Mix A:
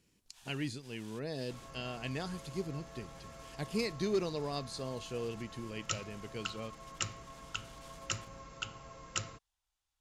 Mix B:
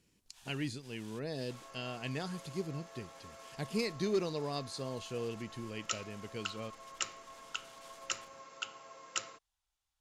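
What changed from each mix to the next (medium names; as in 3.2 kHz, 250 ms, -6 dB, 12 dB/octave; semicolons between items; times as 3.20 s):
second sound: add high-pass 410 Hz 12 dB/octave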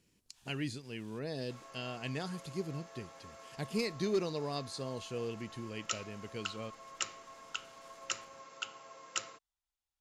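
first sound -7.5 dB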